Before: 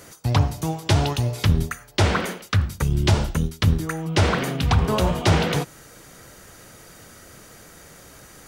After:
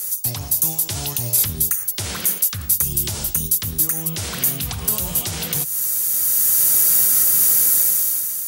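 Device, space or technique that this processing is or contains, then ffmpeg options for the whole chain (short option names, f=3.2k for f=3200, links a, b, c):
FM broadcast chain: -filter_complex "[0:a]highpass=f=58:p=1,dynaudnorm=f=250:g=7:m=16dB,acrossover=split=190|2300[a][b][c];[a]acompressor=threshold=-20dB:ratio=4[d];[b]acompressor=threshold=-28dB:ratio=4[e];[c]acompressor=threshold=-35dB:ratio=4[f];[d][e][f]amix=inputs=3:normalize=0,aemphasis=mode=production:type=75fm,alimiter=limit=-13.5dB:level=0:latency=1:release=91,asoftclip=type=hard:threshold=-15dB,lowpass=f=15k:w=0.5412,lowpass=f=15k:w=1.3066,aemphasis=mode=production:type=75fm,volume=-4.5dB"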